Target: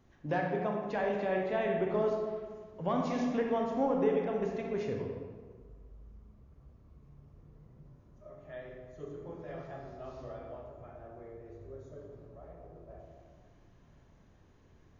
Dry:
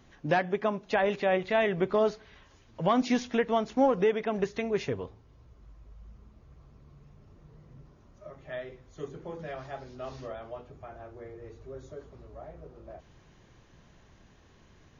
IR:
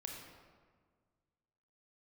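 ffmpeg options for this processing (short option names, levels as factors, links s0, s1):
-filter_complex "[0:a]equalizer=f=3700:w=0.47:g=-6.5[s0];[1:a]atrim=start_sample=2205[s1];[s0][s1]afir=irnorm=-1:irlink=0,volume=0.841"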